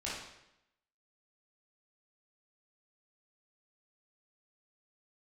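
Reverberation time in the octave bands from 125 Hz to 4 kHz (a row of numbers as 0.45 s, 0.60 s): 0.85 s, 0.90 s, 0.85 s, 0.85 s, 0.80 s, 0.75 s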